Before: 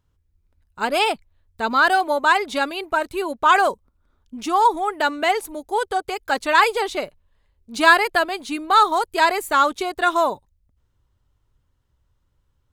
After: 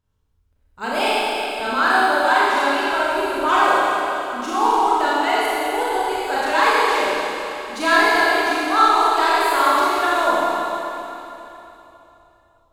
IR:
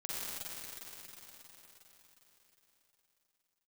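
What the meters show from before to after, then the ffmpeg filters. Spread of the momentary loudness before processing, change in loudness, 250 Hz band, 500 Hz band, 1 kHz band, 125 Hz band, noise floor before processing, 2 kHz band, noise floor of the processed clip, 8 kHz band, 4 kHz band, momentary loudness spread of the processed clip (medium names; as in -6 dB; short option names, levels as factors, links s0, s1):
11 LU, +1.5 dB, +3.0 dB, +2.5 dB, +2.0 dB, no reading, -68 dBFS, +2.0 dB, -61 dBFS, +2.5 dB, +2.5 dB, 10 LU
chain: -filter_complex "[0:a]asoftclip=type=tanh:threshold=0.501[s0];[1:a]atrim=start_sample=2205,asetrate=61740,aresample=44100[s1];[s0][s1]afir=irnorm=-1:irlink=0,volume=1.33"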